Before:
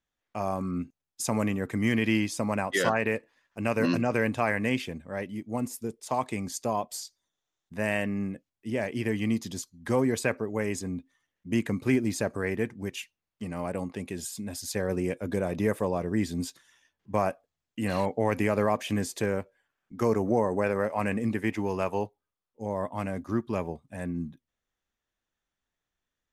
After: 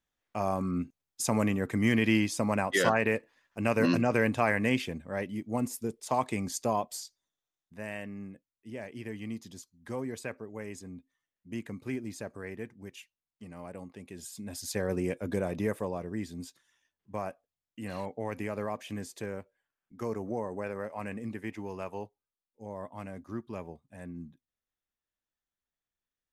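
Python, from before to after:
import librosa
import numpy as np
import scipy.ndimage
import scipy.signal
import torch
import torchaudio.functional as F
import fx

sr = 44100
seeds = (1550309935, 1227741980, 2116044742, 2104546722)

y = fx.gain(x, sr, db=fx.line((6.72, 0.0), (7.84, -11.0), (14.02, -11.0), (14.64, -2.0), (15.38, -2.0), (16.32, -9.5)))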